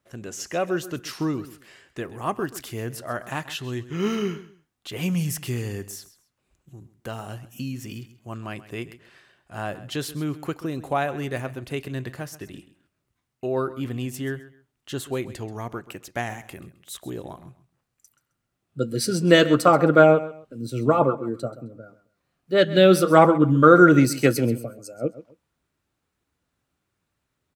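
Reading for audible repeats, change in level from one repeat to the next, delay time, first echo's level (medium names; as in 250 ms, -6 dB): 2, -12.5 dB, 132 ms, -16.0 dB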